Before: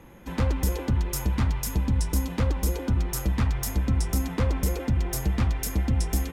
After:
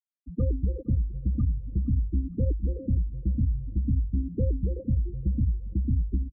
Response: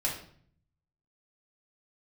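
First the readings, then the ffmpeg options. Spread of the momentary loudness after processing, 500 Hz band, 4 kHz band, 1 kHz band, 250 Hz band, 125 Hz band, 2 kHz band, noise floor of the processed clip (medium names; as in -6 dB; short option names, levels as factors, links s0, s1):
3 LU, -5.0 dB, under -40 dB, under -30 dB, -2.0 dB, -1.0 dB, under -40 dB, -51 dBFS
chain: -af "afftfilt=real='re*gte(hypot(re,im),0.141)':imag='im*gte(hypot(re,im),0.141)':win_size=1024:overlap=0.75,aecho=1:1:465|930|1395:0.1|0.035|0.0123,volume=0.891"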